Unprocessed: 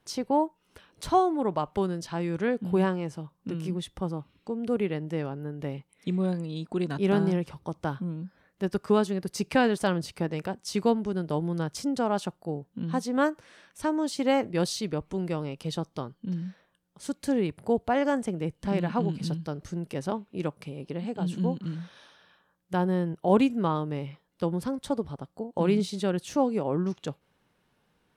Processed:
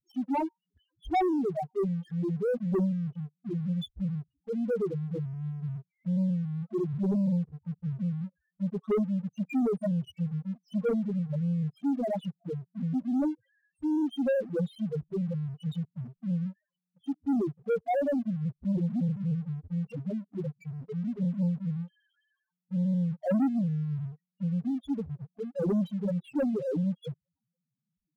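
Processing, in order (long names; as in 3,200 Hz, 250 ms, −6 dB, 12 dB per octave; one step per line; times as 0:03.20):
high shelf with overshoot 3,800 Hz −6.5 dB, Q 3
spectral peaks only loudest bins 1
leveller curve on the samples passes 2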